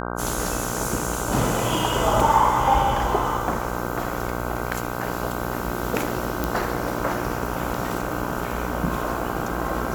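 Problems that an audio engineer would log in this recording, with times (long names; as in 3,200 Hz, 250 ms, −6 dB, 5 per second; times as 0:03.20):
mains buzz 60 Hz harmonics 26 −29 dBFS
0:06.44: click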